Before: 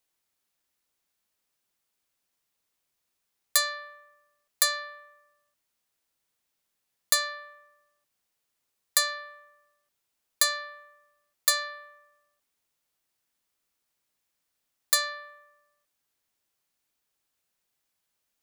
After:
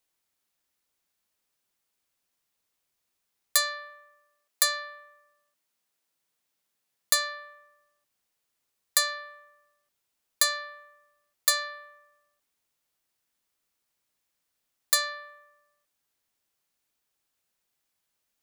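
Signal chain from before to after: 3.89–7.13 s: high-pass 280 Hz -> 75 Hz

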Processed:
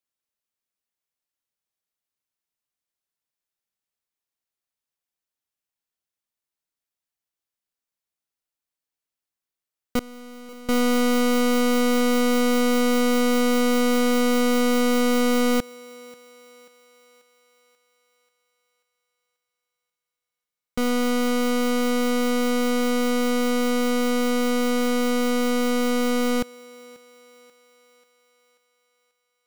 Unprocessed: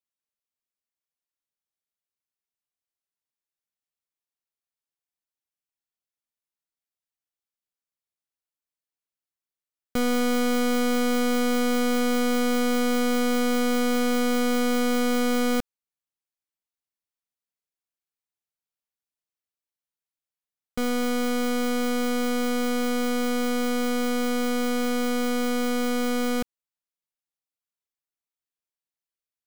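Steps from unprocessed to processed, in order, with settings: tracing distortion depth 0.026 ms; 9.99–10.69 s: expander -12 dBFS; thinning echo 537 ms, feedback 56%, high-pass 380 Hz, level -20.5 dB; trim +3 dB

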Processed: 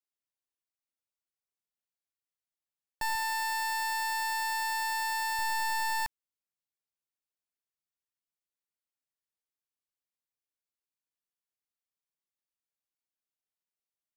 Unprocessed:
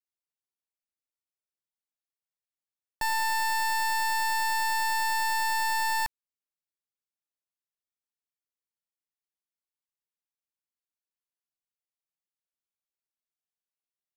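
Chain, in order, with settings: 3.15–5.39 s: bass shelf 250 Hz -11.5 dB; trim -3.5 dB

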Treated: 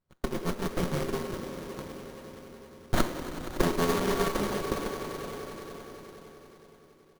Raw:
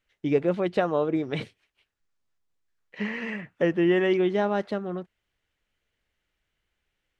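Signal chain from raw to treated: bit-reversed sample order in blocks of 64 samples; inverted gate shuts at -26 dBFS, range -34 dB; in parallel at -7.5 dB: fuzz box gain 52 dB, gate -60 dBFS; on the sum: level rider gain up to 7 dB; echo with a slow build-up 94 ms, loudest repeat 5, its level -15.5 dB; on a send at -5 dB: reverberation RT60 3.1 s, pre-delay 6 ms; on the sum: frequency shift +83 Hz; comb 5.5 ms, depth 52%; sliding maximum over 17 samples; trim -3.5 dB

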